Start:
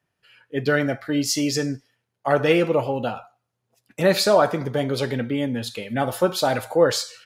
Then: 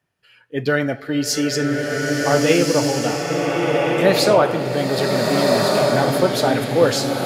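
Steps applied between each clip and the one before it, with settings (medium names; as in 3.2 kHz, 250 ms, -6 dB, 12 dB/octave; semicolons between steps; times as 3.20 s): swelling reverb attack 1500 ms, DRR -1.5 dB; trim +1.5 dB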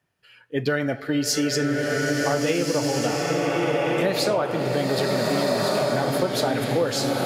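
compression, threshold -19 dBFS, peak gain reduction 10 dB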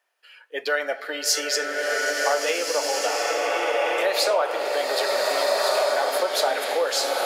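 high-pass 520 Hz 24 dB/octave; trim +3 dB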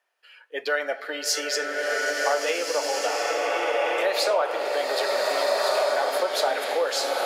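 treble shelf 5.6 kHz -4.5 dB; trim -1 dB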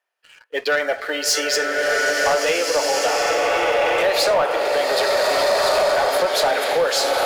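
waveshaping leveller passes 2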